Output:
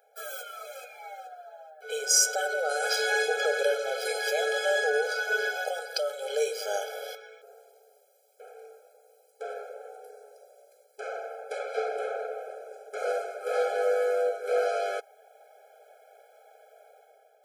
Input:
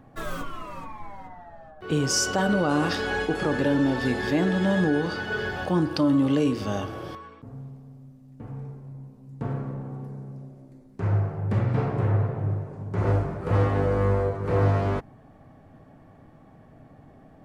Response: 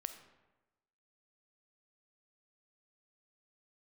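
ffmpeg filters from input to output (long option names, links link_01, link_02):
-af "aemphasis=mode=production:type=75kf,dynaudnorm=framelen=120:gausssize=9:maxgain=8.5dB,afftfilt=real='re*eq(mod(floor(b*sr/1024/430),2),1)':imag='im*eq(mod(floor(b*sr/1024/430),2),1)':win_size=1024:overlap=0.75,volume=-6dB"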